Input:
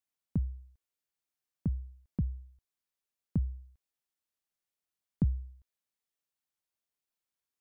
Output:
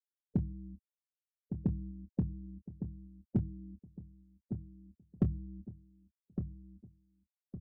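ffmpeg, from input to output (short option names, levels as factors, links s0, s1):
-filter_complex "[0:a]aeval=exprs='val(0)+0.5*0.0168*sgn(val(0))':c=same,highpass=98,bandreject=f=50:t=h:w=6,bandreject=f=100:t=h:w=6,bandreject=f=150:t=h:w=6,afftfilt=real='re*gte(hypot(re,im),0.0178)':imag='im*gte(hypot(re,im),0.0178)':win_size=1024:overlap=0.75,lowshelf=f=300:g=-9,aeval=exprs='clip(val(0),-1,0.0299)':c=same,asplit=2[s0][s1];[s1]adelay=26,volume=0.251[s2];[s0][s2]amix=inputs=2:normalize=0,asplit=2[s3][s4];[s4]adelay=1160,lowpass=f=970:p=1,volume=0.422,asplit=2[s5][s6];[s6]adelay=1160,lowpass=f=970:p=1,volume=0.37,asplit=2[s7][s8];[s8]adelay=1160,lowpass=f=970:p=1,volume=0.37,asplit=2[s9][s10];[s10]adelay=1160,lowpass=f=970:p=1,volume=0.37[s11];[s5][s7][s9][s11]amix=inputs=4:normalize=0[s12];[s3][s12]amix=inputs=2:normalize=0,volume=2.51"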